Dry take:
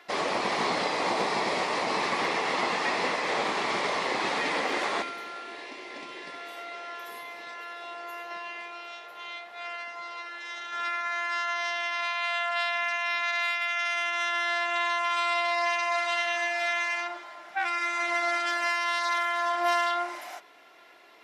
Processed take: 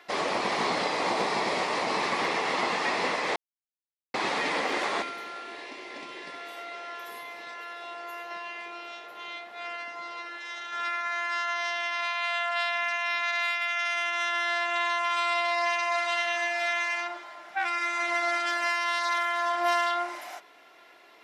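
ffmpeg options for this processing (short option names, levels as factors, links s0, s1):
-filter_complex "[0:a]asettb=1/sr,asplit=3[s0][s1][s2];[s0]atrim=end=8.664[s3];[s1]atrim=start=8.66:end=10.37,asetpts=PTS-STARTPTS,afade=t=in:d=0.004:c=qsin,afade=t=out:st=1.706:d=0.004:c=qsin,equalizer=f=270:w=1.1:g=6.5[s4];[s2]atrim=start=10.366[s5];[s3][s4]acrossfade=d=0.004:c1=hsin:c2=qsin[s6];[s6][s5]acrossfade=d=0.004:c1=qsin:c2=hsin,asplit=3[s7][s8][s9];[s7]atrim=end=3.36,asetpts=PTS-STARTPTS,afade=t=out:st=3.356:d=0.004:c=hsin[s10];[s8]atrim=start=3.36:end=4.14,asetpts=PTS-STARTPTS,volume=0[s11];[s9]atrim=start=4.14,asetpts=PTS-STARTPTS,afade=t=in:d=0.004:c=hsin[s12];[s10][s11][s12]concat=n=3:v=0:a=1"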